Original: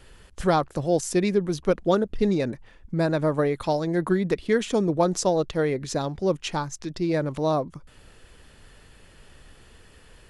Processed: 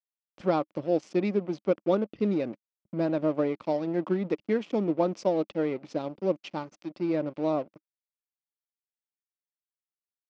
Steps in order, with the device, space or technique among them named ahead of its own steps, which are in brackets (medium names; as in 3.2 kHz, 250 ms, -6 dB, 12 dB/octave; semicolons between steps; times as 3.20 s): blown loudspeaker (crossover distortion -36.5 dBFS; cabinet simulation 150–4800 Hz, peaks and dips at 210 Hz +5 dB, 310 Hz +8 dB, 570 Hz +6 dB, 1.7 kHz -6 dB, 2.4 kHz +3 dB, 3.9 kHz -5 dB); trim -6.5 dB